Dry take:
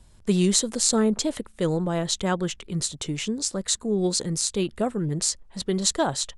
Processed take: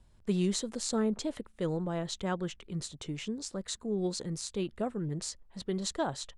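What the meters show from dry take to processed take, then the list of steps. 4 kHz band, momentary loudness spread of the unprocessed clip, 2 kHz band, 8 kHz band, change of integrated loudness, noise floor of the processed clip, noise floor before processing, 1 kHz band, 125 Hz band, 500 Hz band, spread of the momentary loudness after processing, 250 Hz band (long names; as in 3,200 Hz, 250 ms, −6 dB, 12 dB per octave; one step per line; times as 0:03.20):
−12.0 dB, 8 LU, −9.0 dB, −14.5 dB, −10.0 dB, −60 dBFS, −52 dBFS, −8.5 dB, −8.0 dB, −8.0 dB, 8 LU, −8.0 dB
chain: high-shelf EQ 5,300 Hz −10 dB
level −8 dB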